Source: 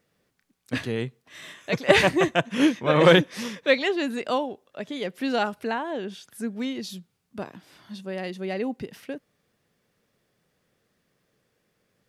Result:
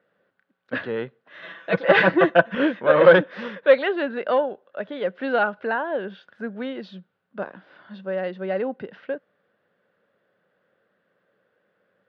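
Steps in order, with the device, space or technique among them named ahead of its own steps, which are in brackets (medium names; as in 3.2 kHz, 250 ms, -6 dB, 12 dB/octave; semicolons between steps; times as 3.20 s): guitar amplifier (valve stage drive 12 dB, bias 0.25; tone controls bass -12 dB, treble -15 dB; cabinet simulation 99–4000 Hz, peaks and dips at 99 Hz +5 dB, 190 Hz +7 dB, 550 Hz +8 dB, 1.5 kHz +9 dB, 2.3 kHz -5 dB); 1.42–2.55 s: comb 6 ms, depth 91%; trim +2.5 dB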